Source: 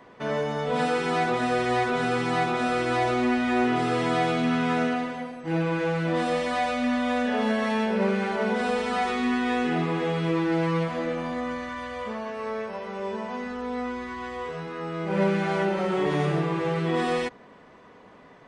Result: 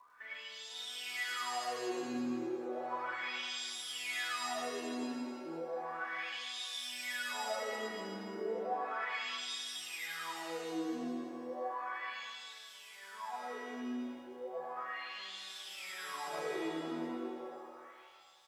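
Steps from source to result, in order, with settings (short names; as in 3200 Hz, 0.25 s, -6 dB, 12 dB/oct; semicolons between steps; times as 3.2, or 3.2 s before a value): CVSD 32 kbps; wah 0.34 Hz 270–3700 Hz, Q 19; crackle 580/s -69 dBFS; on a send: echo 0.106 s -4.5 dB; on the sum: compressor, threshold -39 dBFS, peak gain reduction 8 dB; shimmer reverb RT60 1.5 s, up +7 st, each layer -2 dB, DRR 1.5 dB; gain +1.5 dB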